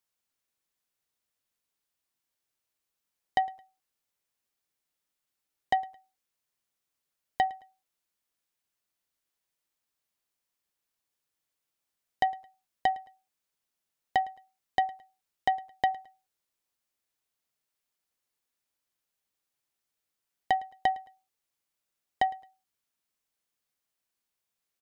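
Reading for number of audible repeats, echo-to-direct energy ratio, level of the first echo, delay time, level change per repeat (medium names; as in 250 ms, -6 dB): 2, -21.5 dB, -22.0 dB, 109 ms, -10.5 dB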